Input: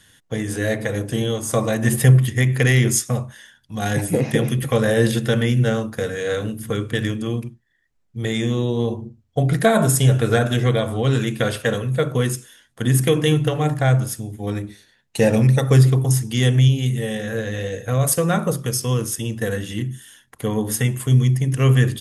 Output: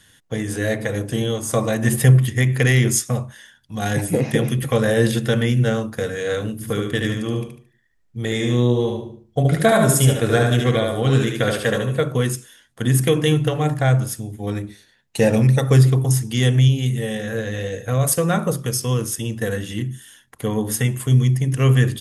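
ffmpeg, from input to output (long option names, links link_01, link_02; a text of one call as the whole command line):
ffmpeg -i in.wav -filter_complex "[0:a]asettb=1/sr,asplit=3[link_01][link_02][link_03];[link_01]atrim=end=6.544[link_04];[link_02]atrim=start=6.54:end=12.01,asetpts=PTS-STARTPTS,afade=type=in:duration=0.004:curve=qsin,afade=type=out:start_time=5.466:duration=0.004:curve=qsin,aecho=1:1:74|148|222|296:0.631|0.208|0.0687|0.0227,atrim=end_sample=241227[link_05];[link_03]atrim=start=12.006[link_06];[link_04][link_05]acrossfade=duration=0.004:curve1=hsin:curve2=qsin[link_07];[link_07][link_06]acrossfade=duration=0.004:curve1=qsin:curve2=hsin" out.wav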